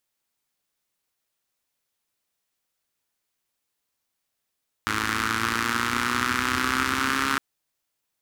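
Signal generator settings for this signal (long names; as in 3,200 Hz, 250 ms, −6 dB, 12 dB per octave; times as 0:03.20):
pulse-train model of a four-cylinder engine, changing speed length 2.51 s, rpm 3,200, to 4,100, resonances 88/260/1,300 Hz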